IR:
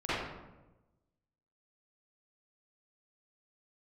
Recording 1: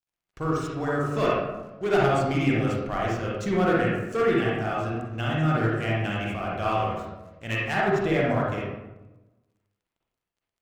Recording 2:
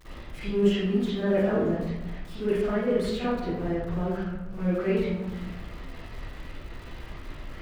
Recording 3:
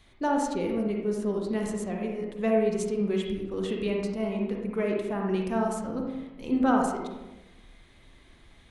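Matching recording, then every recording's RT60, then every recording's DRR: 2; 1.1 s, 1.1 s, 1.1 s; -5.5 dB, -14.5 dB, 0.0 dB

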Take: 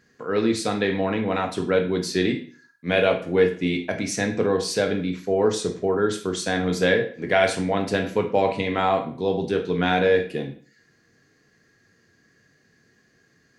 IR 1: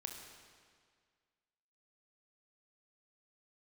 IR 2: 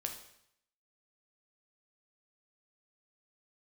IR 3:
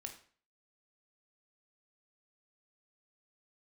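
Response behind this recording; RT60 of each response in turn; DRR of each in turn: 3; 1.9 s, 0.70 s, 0.45 s; 2.5 dB, 3.0 dB, 3.5 dB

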